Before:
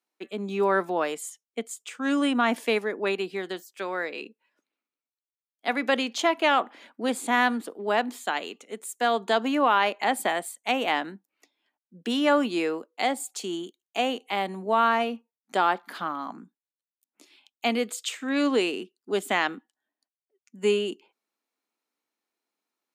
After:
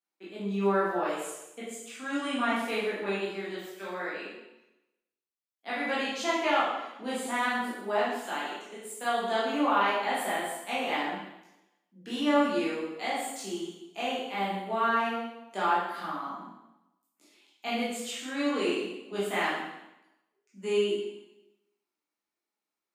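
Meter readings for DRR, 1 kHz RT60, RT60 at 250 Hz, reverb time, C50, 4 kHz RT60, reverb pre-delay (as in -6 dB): -9.5 dB, 0.90 s, 0.95 s, 0.90 s, 0.0 dB, 0.90 s, 6 ms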